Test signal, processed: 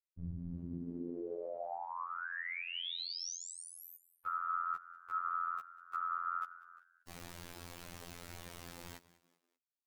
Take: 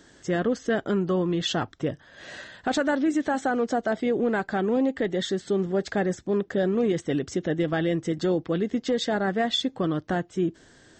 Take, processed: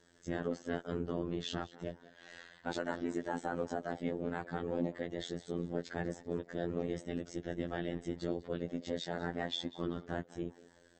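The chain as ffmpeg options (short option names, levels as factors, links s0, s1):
-filter_complex "[0:a]afftfilt=real='hypot(re,im)*cos(2*PI*random(0))':imag='hypot(re,im)*sin(2*PI*random(1))':win_size=512:overlap=0.75,acrossover=split=6400[s0][s1];[s1]acompressor=threshold=0.00501:ratio=4:attack=1:release=60[s2];[s0][s2]amix=inputs=2:normalize=0,asplit=4[s3][s4][s5][s6];[s4]adelay=194,afreqshift=75,volume=0.112[s7];[s5]adelay=388,afreqshift=150,volume=0.0447[s8];[s6]adelay=582,afreqshift=225,volume=0.018[s9];[s3][s7][s8][s9]amix=inputs=4:normalize=0,afftfilt=real='hypot(re,im)*cos(PI*b)':imag='0':win_size=2048:overlap=0.75,volume=0.668"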